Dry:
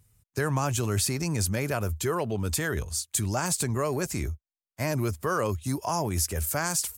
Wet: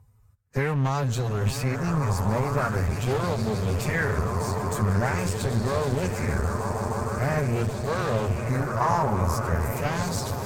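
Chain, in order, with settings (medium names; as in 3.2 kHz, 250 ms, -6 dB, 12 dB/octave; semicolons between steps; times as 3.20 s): tilt shelf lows +7 dB, about 1.2 kHz; echo with a slow build-up 104 ms, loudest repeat 8, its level -13.5 dB; time stretch by phase-locked vocoder 1.5×; one-sided clip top -30 dBFS; graphic EQ with 31 bands 315 Hz -11 dB, 3.15 kHz -4 dB, 10 kHz -7 dB; sweeping bell 0.44 Hz 940–4000 Hz +11 dB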